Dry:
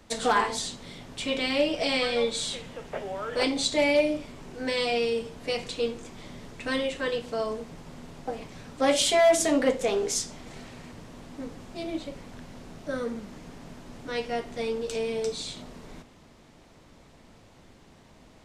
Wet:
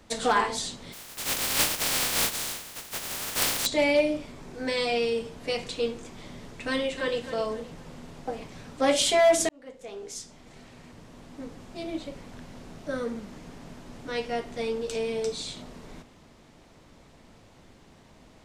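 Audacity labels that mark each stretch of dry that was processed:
0.920000	3.650000	compressing power law on the bin magnitudes exponent 0.11
4.310000	4.900000	notch filter 2,900 Hz
6.710000	7.220000	delay throw 260 ms, feedback 35%, level −11 dB
9.490000	12.890000	fade in equal-power

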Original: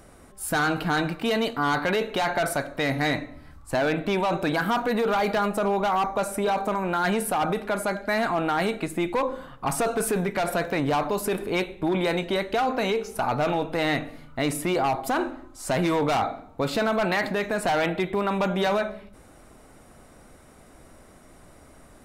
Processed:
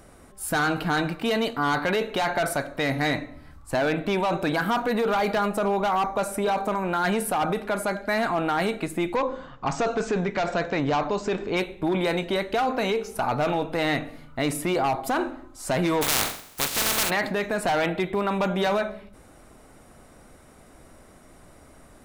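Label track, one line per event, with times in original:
9.160000	11.570000	Butterworth low-pass 7,400 Hz 72 dB per octave
16.010000	17.090000	compressing power law on the bin magnitudes exponent 0.17

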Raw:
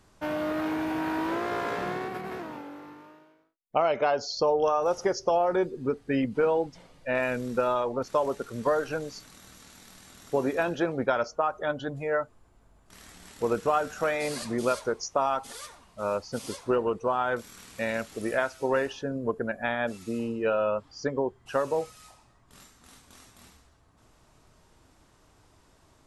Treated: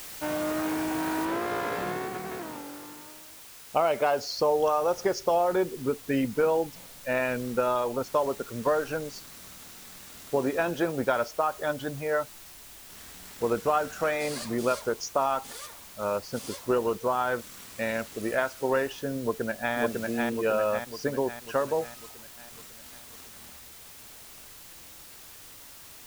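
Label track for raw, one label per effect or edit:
1.250000	1.250000	noise floor change −42 dB −48 dB
19.210000	19.740000	delay throw 550 ms, feedback 55%, level −2 dB

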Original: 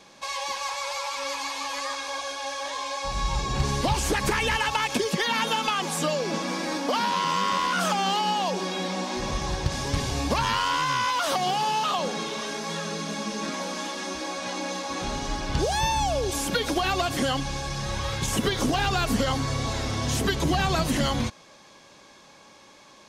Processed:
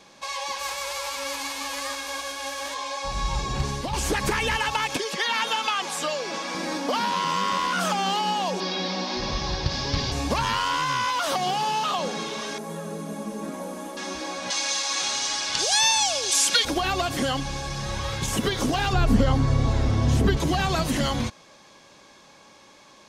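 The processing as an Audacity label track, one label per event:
0.580000	2.730000	spectral envelope flattened exponent 0.6
3.340000	3.930000	fade out equal-power, to −8 dB
4.960000	6.550000	meter weighting curve A
8.600000	10.120000	high shelf with overshoot 6,700 Hz −12 dB, Q 3
12.580000	13.970000	drawn EQ curve 590 Hz 0 dB, 2,100 Hz −11 dB, 5,200 Hz −16 dB, 11,000 Hz +6 dB
14.500000	16.650000	meter weighting curve ITU-R 468
18.930000	20.370000	spectral tilt −2.5 dB per octave

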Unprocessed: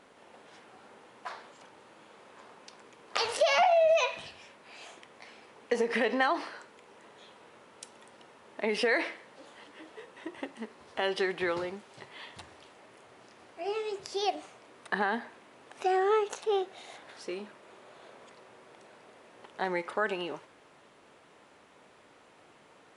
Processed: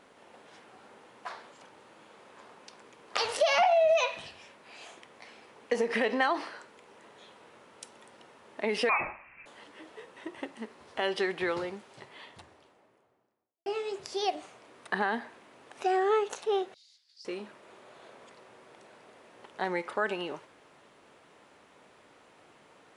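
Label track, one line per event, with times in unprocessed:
8.890000	9.460000	voice inversion scrambler carrier 2,900 Hz
11.750000	13.660000	fade out and dull
16.740000	17.250000	four-pole ladder band-pass 5,000 Hz, resonance 80%

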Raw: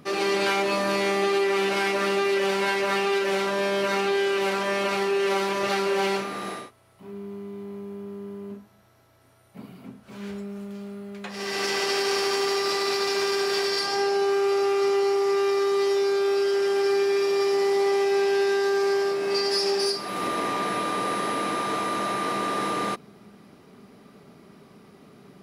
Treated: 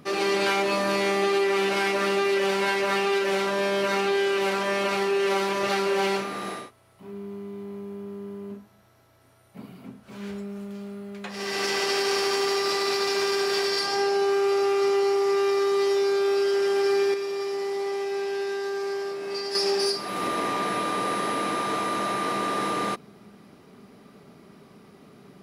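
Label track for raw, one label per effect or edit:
17.140000	19.550000	clip gain −6.5 dB

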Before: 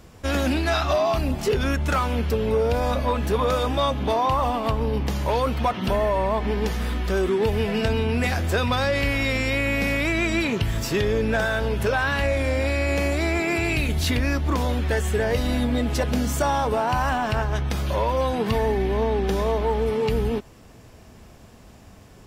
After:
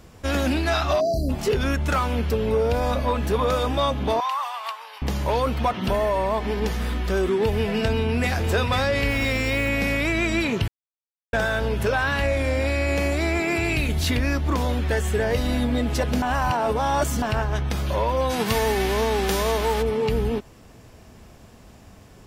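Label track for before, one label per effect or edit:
1.010000	1.290000	time-frequency box erased 750–4,000 Hz
4.200000	5.020000	high-pass filter 970 Hz 24 dB per octave
5.940000	6.600000	bass and treble bass −3 dB, treble +4 dB
7.890000	8.320000	delay throw 500 ms, feedback 45%, level −6.5 dB
9.100000	9.690000	log-companded quantiser 6 bits
10.680000	11.330000	silence
16.220000	17.220000	reverse
18.290000	19.810000	spectral envelope flattened exponent 0.6

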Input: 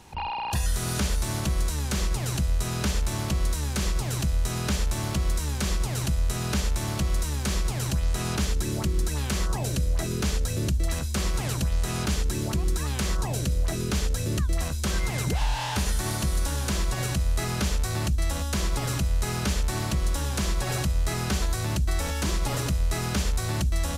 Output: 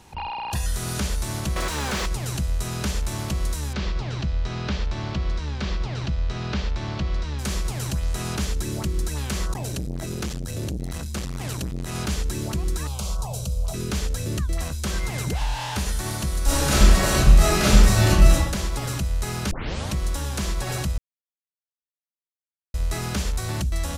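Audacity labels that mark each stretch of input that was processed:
1.560000	2.060000	mid-hump overdrive drive 30 dB, tone 2,100 Hz, clips at −16.5 dBFS
3.730000	7.390000	low-pass filter 4,700 Hz 24 dB per octave
9.530000	11.950000	saturating transformer saturates under 220 Hz
12.870000	13.740000	phaser with its sweep stopped centre 750 Hz, stages 4
16.440000	18.320000	thrown reverb, RT60 1 s, DRR −10.5 dB
19.510000	19.510000	tape start 0.43 s
20.980000	22.740000	silence

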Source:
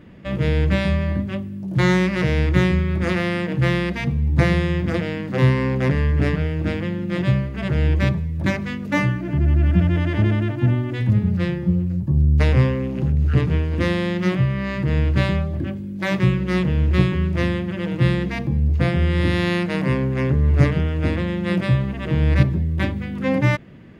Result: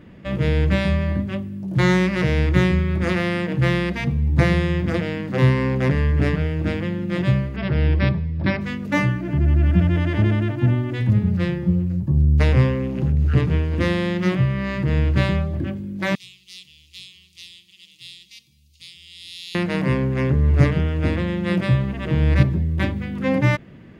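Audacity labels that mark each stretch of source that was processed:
7.560000	8.610000	linear-phase brick-wall low-pass 5,600 Hz
16.150000	19.550000	inverse Chebyshev high-pass filter stop band from 1,700 Hz

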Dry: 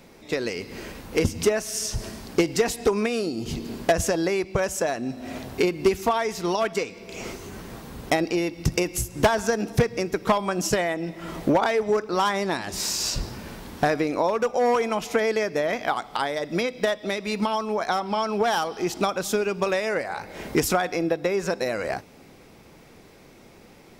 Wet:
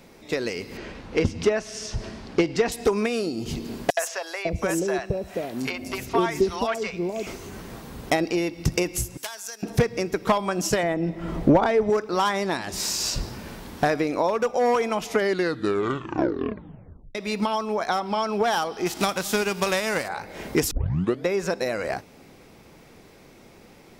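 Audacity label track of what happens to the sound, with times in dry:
0.770000	2.720000	low-pass filter 4,500 Hz
3.900000	7.270000	three-band delay without the direct sound highs, mids, lows 70/550 ms, splits 610/5,700 Hz
9.170000	9.630000	first difference
10.830000	11.900000	spectral tilt −2.5 dB per octave
15.050000	15.050000	tape stop 2.10 s
18.850000	20.070000	spectral envelope flattened exponent 0.6
20.710000	20.710000	tape start 0.55 s

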